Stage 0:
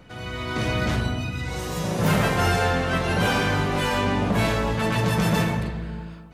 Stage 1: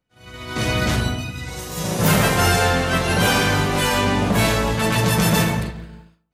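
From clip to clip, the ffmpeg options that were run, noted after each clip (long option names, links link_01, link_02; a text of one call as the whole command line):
ffmpeg -i in.wav -af "agate=range=-33dB:threshold=-23dB:ratio=3:detection=peak,highshelf=frequency=4900:gain=10.5,volume=3.5dB" out.wav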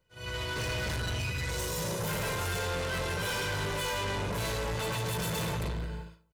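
ffmpeg -i in.wav -af "aecho=1:1:2:0.7,areverse,acompressor=threshold=-25dB:ratio=6,areverse,asoftclip=type=tanh:threshold=-32dB,volume=2dB" out.wav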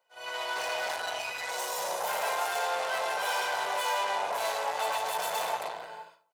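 ffmpeg -i in.wav -af "highpass=frequency=740:width_type=q:width=4.9" out.wav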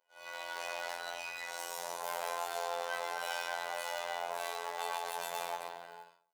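ffmpeg -i in.wav -af "acrusher=bits=5:mode=log:mix=0:aa=0.000001,afftfilt=real='hypot(re,im)*cos(PI*b)':imag='0':win_size=2048:overlap=0.75,volume=-4dB" out.wav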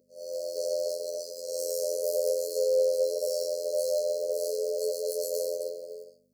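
ffmpeg -i in.wav -af "aeval=exprs='val(0)+0.00112*(sin(2*PI*50*n/s)+sin(2*PI*2*50*n/s)/2+sin(2*PI*3*50*n/s)/3+sin(2*PI*4*50*n/s)/4+sin(2*PI*5*50*n/s)/5)':channel_layout=same,afftfilt=real='re*(1-between(b*sr/4096,660,4100))':imag='im*(1-between(b*sr/4096,660,4100))':win_size=4096:overlap=0.75,highpass=frequency=470:width_type=q:width=4.8,volume=8dB" out.wav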